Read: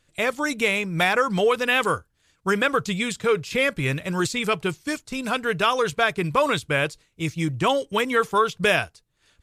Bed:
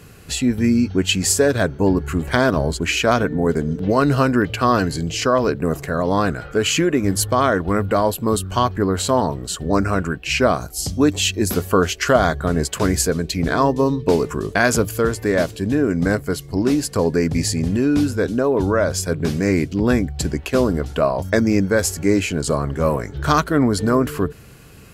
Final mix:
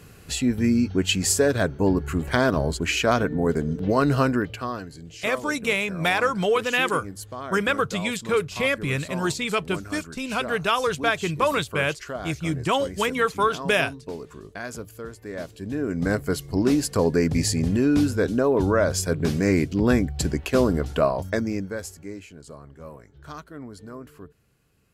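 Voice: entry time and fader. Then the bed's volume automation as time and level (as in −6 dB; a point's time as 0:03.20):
5.05 s, −1.5 dB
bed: 0:04.28 −4 dB
0:04.86 −18 dB
0:15.20 −18 dB
0:16.26 −2.5 dB
0:21.03 −2.5 dB
0:22.26 −22.5 dB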